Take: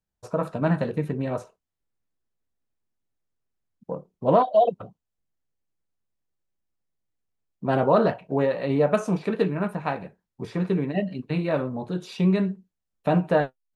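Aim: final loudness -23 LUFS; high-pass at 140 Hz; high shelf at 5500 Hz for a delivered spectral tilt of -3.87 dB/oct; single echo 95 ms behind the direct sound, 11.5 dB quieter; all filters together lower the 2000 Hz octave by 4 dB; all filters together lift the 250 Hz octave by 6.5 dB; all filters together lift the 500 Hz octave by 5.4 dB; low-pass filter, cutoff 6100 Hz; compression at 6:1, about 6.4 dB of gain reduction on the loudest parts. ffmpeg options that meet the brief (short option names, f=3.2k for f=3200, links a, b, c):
-af "highpass=140,lowpass=6.1k,equalizer=f=250:t=o:g=9,equalizer=f=500:t=o:g=5,equalizer=f=2k:t=o:g=-5,highshelf=f=5.5k:g=-7.5,acompressor=threshold=-16dB:ratio=6,aecho=1:1:95:0.266"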